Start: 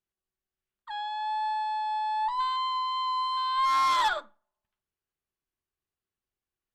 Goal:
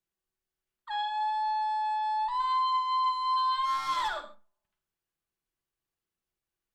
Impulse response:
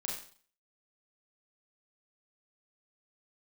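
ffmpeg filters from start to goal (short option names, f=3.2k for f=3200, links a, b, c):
-filter_complex "[0:a]acrossover=split=140[a][b];[b]acompressor=threshold=-29dB:ratio=6[c];[a][c]amix=inputs=2:normalize=0,asplit=2[d][e];[1:a]atrim=start_sample=2205,afade=t=out:st=0.19:d=0.01,atrim=end_sample=8820,adelay=6[f];[e][f]afir=irnorm=-1:irlink=0,volume=-7dB[g];[d][g]amix=inputs=2:normalize=0"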